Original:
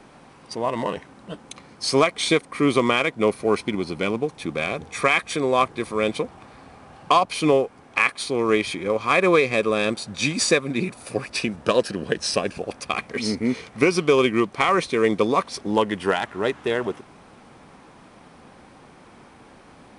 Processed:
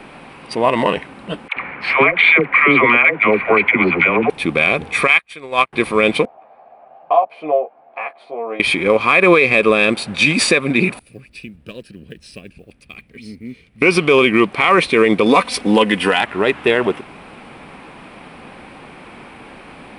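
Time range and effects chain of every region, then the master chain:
1.48–4.30 s: FFT filter 340 Hz 0 dB, 2.2 kHz +13 dB, 5.3 kHz -22 dB, 9.9 kHz -30 dB + compression 4:1, threshold -16 dBFS + phase dispersion lows, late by 89 ms, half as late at 590 Hz
5.07–5.73 s: peaking EQ 270 Hz -8 dB 2.7 oct + upward expansion 2.5:1, over -40 dBFS
6.25–8.60 s: band-pass filter 680 Hz, Q 7.2 + doubling 13 ms -2 dB
10.99–13.82 s: block-companded coder 7-bit + amplifier tone stack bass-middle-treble 10-0-1
15.26–16.21 s: treble shelf 3.8 kHz +6.5 dB + comb 4 ms, depth 48%
whole clip: fifteen-band graphic EQ 100 Hz -5 dB, 2.5 kHz +8 dB, 6.3 kHz -11 dB; loudness maximiser +10.5 dB; trim -1 dB

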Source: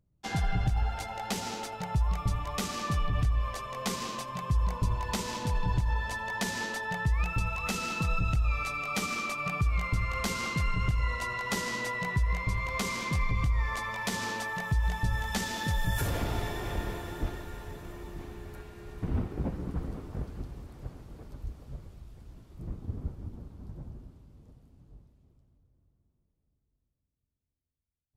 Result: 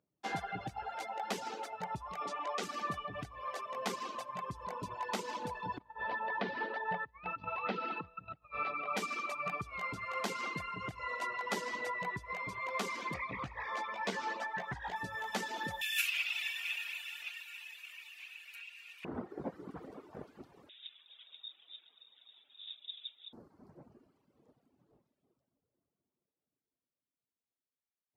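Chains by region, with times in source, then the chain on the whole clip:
2.21–2.63 s: Chebyshev band-pass 330–6900 Hz + level flattener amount 50%
5.78–8.97 s: steep low-pass 4.4 kHz + treble shelf 3.1 kHz -11 dB + compressor with a negative ratio -31 dBFS, ratio -0.5
13.14–14.96 s: peaking EQ 11 kHz -13.5 dB 0.74 oct + doubling 15 ms -5 dB + loudspeaker Doppler distortion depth 0.33 ms
15.81–19.05 s: resonant high-pass 2.6 kHz, resonance Q 11 + tilt EQ +3 dB/octave
20.69–23.33 s: bass shelf 140 Hz -9 dB + frequency inversion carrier 3.7 kHz
whole clip: reverb removal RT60 1.2 s; high-pass 340 Hz 12 dB/octave; treble shelf 3.5 kHz -12 dB; trim +1 dB

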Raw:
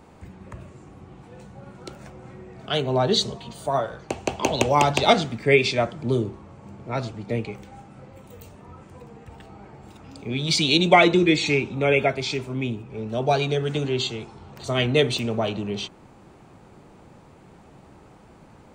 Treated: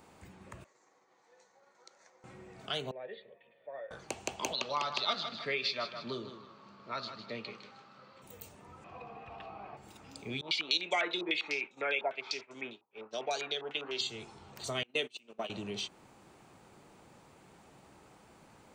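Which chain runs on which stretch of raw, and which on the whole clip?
0.64–2.24 s: expander -39 dBFS + compression 5:1, threshold -51 dBFS + cabinet simulation 470–7500 Hz, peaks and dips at 500 Hz +6 dB, 970 Hz +5 dB, 1.9 kHz +8 dB, 2.8 kHz -7 dB, 4.3 kHz +5 dB, 6.3 kHz +9 dB
2.91–3.91 s: cascade formant filter e + tilt EQ +3 dB/octave
4.53–8.22 s: cabinet simulation 220–5000 Hz, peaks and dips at 310 Hz -9 dB, 460 Hz -5 dB, 780 Hz -8 dB, 1.2 kHz +9 dB, 2.2 kHz -4 dB, 4.3 kHz +9 dB + feedback delay 156 ms, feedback 30%, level -12 dB
8.84–9.77 s: low-pass 4.4 kHz 24 dB/octave + small resonant body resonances 720/1100/2500 Hz, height 15 dB, ringing for 25 ms
10.41–14.01 s: high-pass 390 Hz + expander -33 dBFS + step-sequenced low-pass 10 Hz 930–6900 Hz
14.83–15.50 s: high-pass 190 Hz 24 dB/octave + gate -24 dBFS, range -28 dB + peaking EQ 2.8 kHz +8.5 dB 0.29 oct
whole clip: tilt EQ +2 dB/octave; compression 2:1, threshold -30 dBFS; trim -6.5 dB

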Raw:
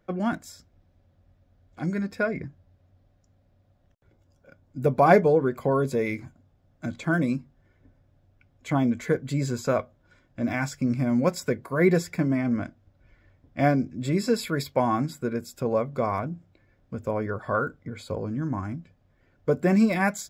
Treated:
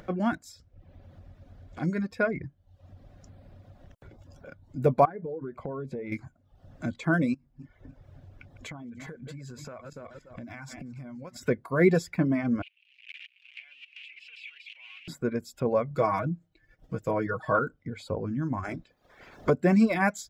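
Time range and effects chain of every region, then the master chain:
5.05–6.12 s: low-pass 1 kHz 6 dB/octave + compression 20:1, threshold -30 dBFS
7.34–11.43 s: backward echo that repeats 144 ms, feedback 44%, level -12.5 dB + dynamic bell 390 Hz, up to -5 dB, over -34 dBFS, Q 0.77 + compression 10:1, threshold -39 dBFS
12.62–15.08 s: zero-crossing glitches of -15.5 dBFS + level held to a coarse grid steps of 16 dB + Butterworth band-pass 2.6 kHz, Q 4
15.90–17.59 s: expander -58 dBFS + treble shelf 4.8 kHz +5 dB + comb 6.3 ms, depth 68%
18.63–19.49 s: spectral peaks clipped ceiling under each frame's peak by 20 dB + band-stop 2.9 kHz, Q 13
whole clip: reverb removal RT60 0.6 s; treble shelf 7.6 kHz -8.5 dB; upward compressor, threshold -37 dBFS

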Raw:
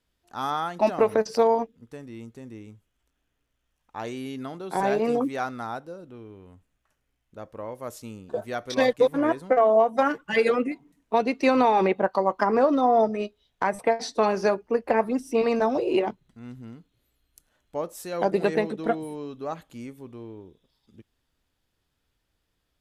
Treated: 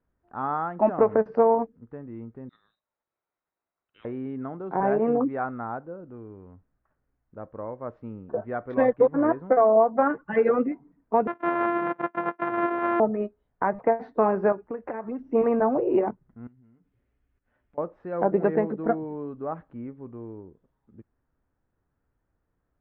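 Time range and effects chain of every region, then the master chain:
2.49–4.05 s: level held to a coarse grid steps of 10 dB + doubling 44 ms -13.5 dB + frequency inversion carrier 3.9 kHz
11.27–13.00 s: sorted samples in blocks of 128 samples + band-pass 410–4200 Hz + peaking EQ 530 Hz -4.5 dB 1.6 oct
14.52–15.22 s: compression 8:1, threshold -30 dBFS + treble shelf 2 kHz +11 dB + decimation joined by straight lines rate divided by 2×
16.47–17.78 s: resonant high shelf 1.7 kHz +7 dB, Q 1.5 + compression 8:1, threshold -56 dBFS + comb of notches 160 Hz
whole clip: low-pass 1.6 kHz 24 dB/octave; peaking EQ 160 Hz +2 dB 2.5 oct

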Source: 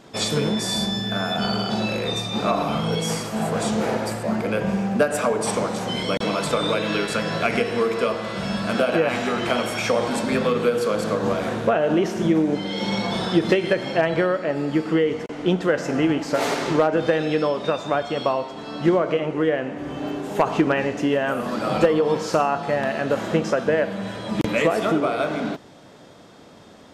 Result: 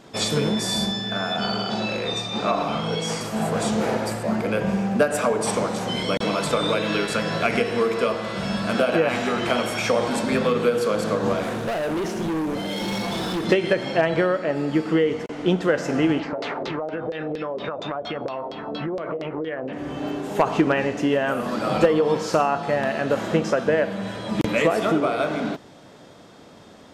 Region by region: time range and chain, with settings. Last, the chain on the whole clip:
0.92–3.21 s: low-pass 7.5 kHz + bass shelf 230 Hz -6 dB
11.43–13.46 s: CVSD coder 64 kbps + delay 887 ms -15.5 dB + hard clipper -23 dBFS
16.19–19.73 s: LFO low-pass saw down 4.3 Hz 420–4800 Hz + compression 12:1, threshold -24 dBFS
whole clip: none

